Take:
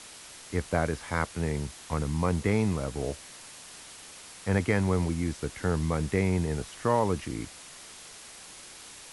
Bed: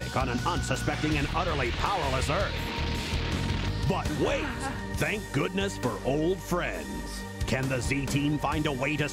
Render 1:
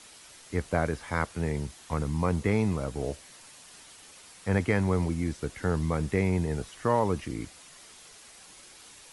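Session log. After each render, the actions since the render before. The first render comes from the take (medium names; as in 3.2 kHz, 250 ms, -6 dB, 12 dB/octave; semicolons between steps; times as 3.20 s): noise reduction 6 dB, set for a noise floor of -48 dBFS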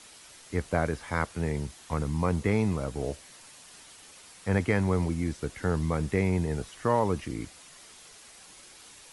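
no audible change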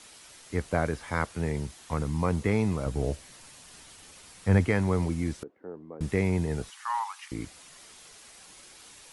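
2.86–4.68 s: bass shelf 180 Hz +8.5 dB; 5.43–6.01 s: ladder band-pass 430 Hz, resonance 30%; 6.70–7.32 s: Chebyshev high-pass 820 Hz, order 6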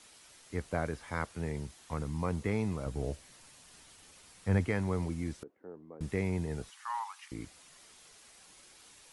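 trim -6.5 dB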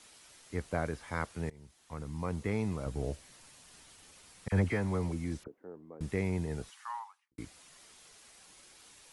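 1.50–2.97 s: fade in equal-power, from -22 dB; 4.48–5.58 s: phase dispersion lows, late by 41 ms, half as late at 1.8 kHz; 6.70–7.38 s: studio fade out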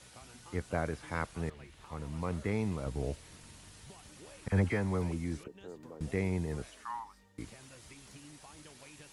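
add bed -27 dB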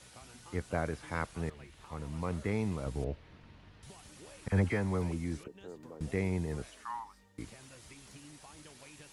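3.04–3.83 s: distance through air 310 m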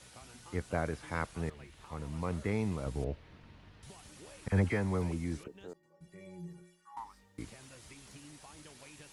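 5.73–6.97 s: inharmonic resonator 170 Hz, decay 0.6 s, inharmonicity 0.03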